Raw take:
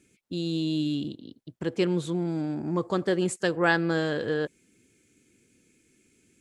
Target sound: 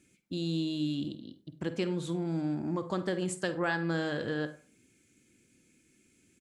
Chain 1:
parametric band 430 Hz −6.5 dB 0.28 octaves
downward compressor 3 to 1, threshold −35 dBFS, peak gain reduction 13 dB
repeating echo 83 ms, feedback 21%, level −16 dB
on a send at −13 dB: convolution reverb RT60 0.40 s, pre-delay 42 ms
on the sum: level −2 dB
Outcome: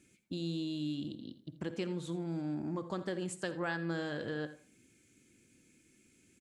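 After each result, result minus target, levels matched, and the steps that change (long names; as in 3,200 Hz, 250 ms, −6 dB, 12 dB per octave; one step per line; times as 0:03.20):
echo 34 ms late; downward compressor: peak gain reduction +5.5 dB
change: repeating echo 49 ms, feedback 21%, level −16 dB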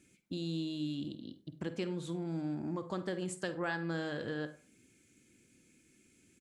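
downward compressor: peak gain reduction +5.5 dB
change: downward compressor 3 to 1, threshold −27 dBFS, peak gain reduction 7.5 dB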